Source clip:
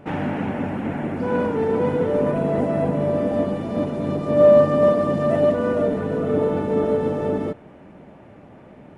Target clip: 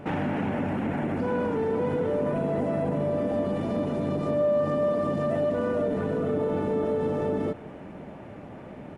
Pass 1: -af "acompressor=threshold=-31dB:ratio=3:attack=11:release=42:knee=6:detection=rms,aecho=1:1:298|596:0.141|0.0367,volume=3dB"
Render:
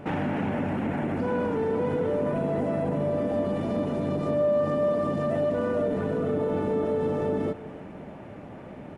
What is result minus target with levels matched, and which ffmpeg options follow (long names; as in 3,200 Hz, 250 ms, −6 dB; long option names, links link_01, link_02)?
echo-to-direct +7 dB
-af "acompressor=threshold=-31dB:ratio=3:attack=11:release=42:knee=6:detection=rms,aecho=1:1:298|596:0.0631|0.0164,volume=3dB"